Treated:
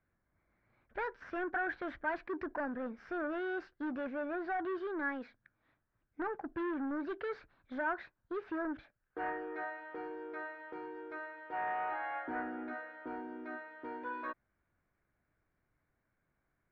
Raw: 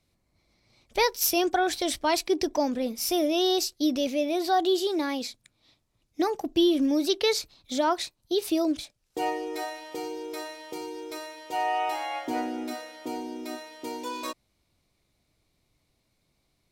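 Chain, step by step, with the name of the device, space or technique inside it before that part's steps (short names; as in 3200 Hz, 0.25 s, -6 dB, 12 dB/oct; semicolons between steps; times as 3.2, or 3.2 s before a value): overdriven synthesiser ladder filter (soft clip -26 dBFS, distortion -9 dB; ladder low-pass 1700 Hz, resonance 75%); gain +3.5 dB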